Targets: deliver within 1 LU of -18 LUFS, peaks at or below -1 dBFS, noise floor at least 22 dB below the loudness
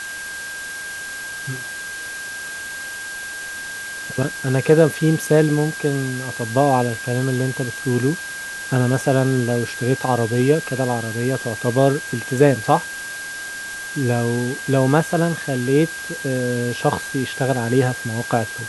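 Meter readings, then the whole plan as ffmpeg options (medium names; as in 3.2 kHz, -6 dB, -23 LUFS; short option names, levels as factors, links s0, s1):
steady tone 1.6 kHz; tone level -29 dBFS; noise floor -31 dBFS; noise floor target -43 dBFS; loudness -21.0 LUFS; peak level -1.5 dBFS; loudness target -18.0 LUFS
-> -af "bandreject=f=1600:w=30"
-af "afftdn=nr=12:nf=-31"
-af "volume=1.41,alimiter=limit=0.891:level=0:latency=1"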